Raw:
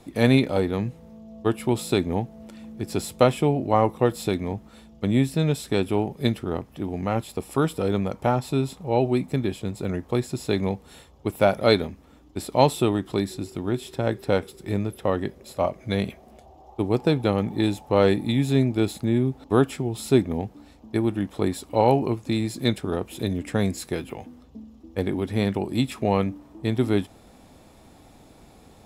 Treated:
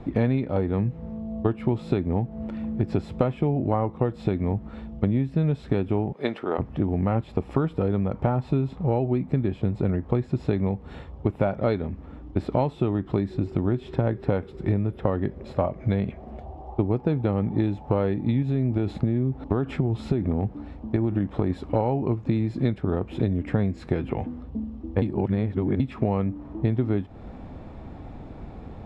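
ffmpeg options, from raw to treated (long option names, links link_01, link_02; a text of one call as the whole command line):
ffmpeg -i in.wav -filter_complex "[0:a]asplit=3[link_01][link_02][link_03];[link_01]afade=type=out:start_time=6.12:duration=0.02[link_04];[link_02]highpass=500,afade=type=in:start_time=6.12:duration=0.02,afade=type=out:start_time=6.58:duration=0.02[link_05];[link_03]afade=type=in:start_time=6.58:duration=0.02[link_06];[link_04][link_05][link_06]amix=inputs=3:normalize=0,asettb=1/sr,asplit=3[link_07][link_08][link_09];[link_07]atrim=end=18.424[link_10];[link_08]atrim=start=18.42:end=21.5,asetpts=PTS-STARTPTS,afade=type=in:duration=0.004:curve=qsin,afade=type=out:start_time=3.076:duration=0.004:curve=qsin,acompressor=threshold=-22dB:ratio=6:attack=3.2:release=140:knee=1:detection=peak[link_11];[link_09]atrim=start=21.496[link_12];[link_10][link_11]acrossfade=duration=0.004:curve1=hsin:curve2=qsin[link_13];[link_13][link_12]acrossfade=duration=0.004:curve1=qsin:curve2=hsin,asplit=3[link_14][link_15][link_16];[link_14]atrim=end=25.022[link_17];[link_15]atrim=start=25.018:end=25.802,asetpts=PTS-STARTPTS,areverse[link_18];[link_16]atrim=start=25.798[link_19];[link_17][link_18]acrossfade=duration=0.004:curve1=hsin:curve2=hsin[link_20];[link_20][link_19]acrossfade=duration=0.004:curve1=hsin:curve2=hsin,lowpass=2000,lowshelf=frequency=190:gain=9.5,acompressor=threshold=-26dB:ratio=12,volume=6.5dB" out.wav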